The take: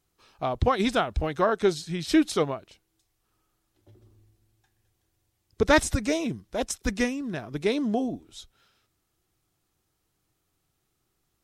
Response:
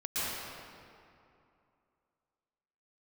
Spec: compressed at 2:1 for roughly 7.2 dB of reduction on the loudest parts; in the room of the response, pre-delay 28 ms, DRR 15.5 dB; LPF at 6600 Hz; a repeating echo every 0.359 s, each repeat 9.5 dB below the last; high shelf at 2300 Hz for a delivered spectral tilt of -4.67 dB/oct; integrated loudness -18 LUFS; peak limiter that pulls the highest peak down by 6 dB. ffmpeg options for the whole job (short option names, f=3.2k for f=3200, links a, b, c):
-filter_complex "[0:a]lowpass=6.6k,highshelf=f=2.3k:g=3.5,acompressor=threshold=-28dB:ratio=2,alimiter=limit=-20dB:level=0:latency=1,aecho=1:1:359|718|1077|1436:0.335|0.111|0.0365|0.012,asplit=2[a][b];[1:a]atrim=start_sample=2205,adelay=28[c];[b][c]afir=irnorm=-1:irlink=0,volume=-23dB[d];[a][d]amix=inputs=2:normalize=0,volume=14dB"